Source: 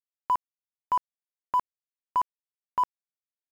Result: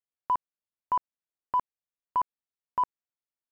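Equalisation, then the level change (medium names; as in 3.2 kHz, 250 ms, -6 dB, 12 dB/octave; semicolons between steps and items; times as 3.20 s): low-pass 1.6 kHz 6 dB/octave; 0.0 dB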